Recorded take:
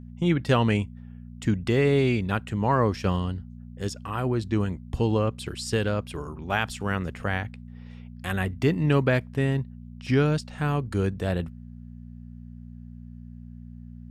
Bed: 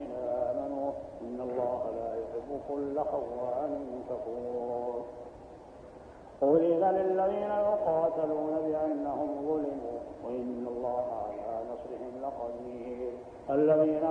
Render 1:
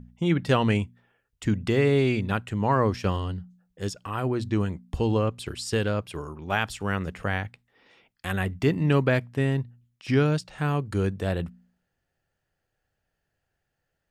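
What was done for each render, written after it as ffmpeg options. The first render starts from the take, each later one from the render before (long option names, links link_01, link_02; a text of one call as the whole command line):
ffmpeg -i in.wav -af "bandreject=frequency=60:width_type=h:width=4,bandreject=frequency=120:width_type=h:width=4,bandreject=frequency=180:width_type=h:width=4,bandreject=frequency=240:width_type=h:width=4" out.wav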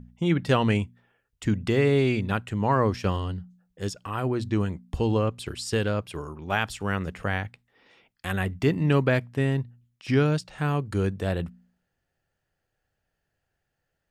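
ffmpeg -i in.wav -af anull out.wav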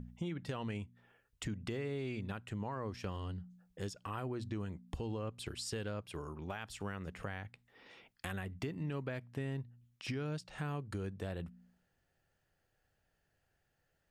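ffmpeg -i in.wav -af "alimiter=limit=-18.5dB:level=0:latency=1:release=317,acompressor=threshold=-43dB:ratio=2.5" out.wav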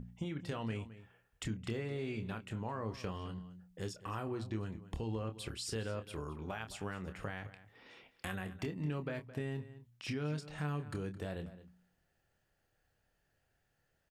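ffmpeg -i in.wav -filter_complex "[0:a]asplit=2[link_01][link_02];[link_02]adelay=27,volume=-8.5dB[link_03];[link_01][link_03]amix=inputs=2:normalize=0,asplit=2[link_04][link_05];[link_05]adelay=215.7,volume=-15dB,highshelf=frequency=4000:gain=-4.85[link_06];[link_04][link_06]amix=inputs=2:normalize=0" out.wav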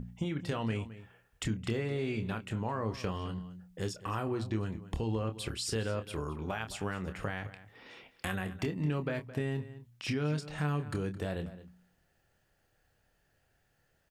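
ffmpeg -i in.wav -af "volume=5.5dB" out.wav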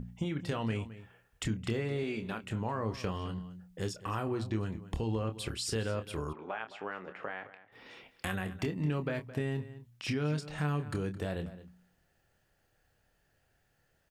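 ffmpeg -i in.wav -filter_complex "[0:a]asettb=1/sr,asplit=3[link_01][link_02][link_03];[link_01]atrim=end=2.034[link_04];[link_02]atrim=start=2.03:end=2.44,asetpts=PTS-STARTPTS,afade=type=in:duration=0.004:curve=qsin,afade=type=out:start_time=0.406:duration=0.004:curve=qsin,equalizer=frequency=110:width_type=o:width=0.84:gain=-11.5[link_05];[link_03]atrim=start=2.436[link_06];[link_04][link_05]acrossfade=duration=0.004:curve1=hsin:curve2=qsin[link_07];[link_07][link_06]acrossfade=duration=0.004:curve1=qsin:curve2=hsin,asplit=3[link_08][link_09][link_10];[link_08]afade=type=out:start_time=6.32:duration=0.02[link_11];[link_09]highpass=390,lowpass=2300,afade=type=in:start_time=6.32:duration=0.02,afade=type=out:start_time=7.71:duration=0.02[link_12];[link_10]afade=type=in:start_time=7.71:duration=0.02[link_13];[link_11][link_12][link_13]amix=inputs=3:normalize=0" out.wav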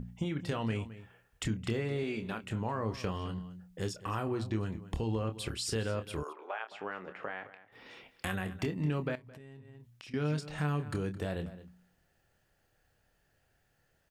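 ffmpeg -i in.wav -filter_complex "[0:a]asettb=1/sr,asplit=3[link_01][link_02][link_03];[link_01]atrim=end=6.234[link_04];[link_02]atrim=start=6.23:end=6.72,asetpts=PTS-STARTPTS,afade=type=in:duration=0.004:curve=qsin,afade=type=out:start_time=0.486:duration=0.004:curve=qsin,highpass=frequency=410:width=0.5412,highpass=frequency=410:width=1.3066[link_05];[link_03]atrim=start=6.716[link_06];[link_04][link_05]acrossfade=duration=0.004:curve1=hsin:curve2=qsin[link_07];[link_07][link_06]acrossfade=duration=0.004:curve1=qsin:curve2=hsin,asettb=1/sr,asplit=3[link_08][link_09][link_10];[link_08]atrim=end=9.154[link_11];[link_09]atrim=start=9.15:end=10.14,asetpts=PTS-STARTPTS,afade=type=in:duration=0.004:curve=qsin,afade=type=out:start_time=0.986:duration=0.004:curve=qsin,acompressor=threshold=-48dB:ratio=10:attack=3.2:release=140:knee=1:detection=peak[link_12];[link_10]atrim=start=10.136[link_13];[link_11][link_12]acrossfade=duration=0.004:curve1=hsin:curve2=qsin[link_14];[link_14][link_13]acrossfade=duration=0.004:curve1=qsin:curve2=hsin" out.wav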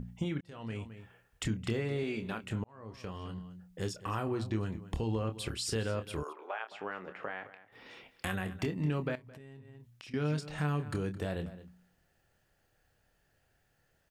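ffmpeg -i in.wav -filter_complex "[0:a]asplit=3[link_01][link_02][link_03];[link_01]atrim=end=0.41,asetpts=PTS-STARTPTS,afade=type=out:start_time=0.406:duration=0.004:curve=hsin[link_04];[link_02]atrim=start=0.41:end=2.64,asetpts=PTS-STARTPTS,afade=type=in:duration=0.61,afade=type=out:start_time=2.226:duration=0.004:curve=hsin[link_05];[link_03]atrim=start=2.64,asetpts=PTS-STARTPTS,afade=type=in:duration=1.48:curve=qsin[link_06];[link_04][link_05][link_06]concat=n=3:v=0:a=1" out.wav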